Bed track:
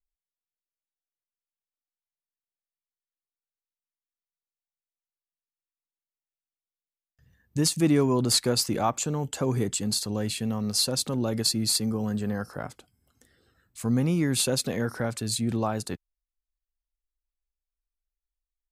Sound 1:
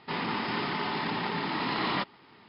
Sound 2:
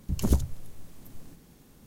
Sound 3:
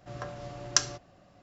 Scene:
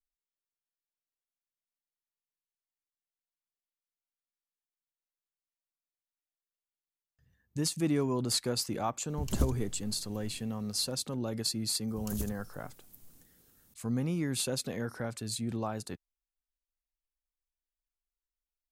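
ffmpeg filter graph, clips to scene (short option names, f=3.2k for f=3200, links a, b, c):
-filter_complex "[2:a]asplit=2[a][b];[0:a]volume=-7.5dB[c];[b]aemphasis=mode=production:type=75kf[d];[a]atrim=end=1.86,asetpts=PTS-STARTPTS,volume=-6dB,afade=t=in:d=0.004:c=hsin,afade=t=out:st=1.856:d=0.004:c=hsin,adelay=9090[e];[d]atrim=end=1.86,asetpts=PTS-STARTPTS,volume=-15.5dB,afade=t=in:d=0.004:c=hsin,afade=t=out:st=1.856:d=0.004:c=hsin,adelay=11880[f];[c][e][f]amix=inputs=3:normalize=0"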